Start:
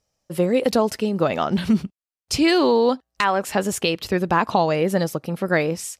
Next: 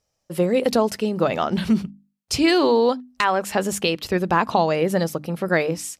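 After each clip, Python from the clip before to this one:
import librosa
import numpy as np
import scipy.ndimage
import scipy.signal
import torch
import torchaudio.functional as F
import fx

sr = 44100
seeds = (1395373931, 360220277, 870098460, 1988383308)

y = fx.hum_notches(x, sr, base_hz=50, count=6)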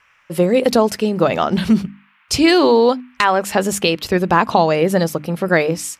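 y = fx.dmg_noise_band(x, sr, seeds[0], low_hz=970.0, high_hz=2700.0, level_db=-61.0)
y = y * librosa.db_to_amplitude(5.0)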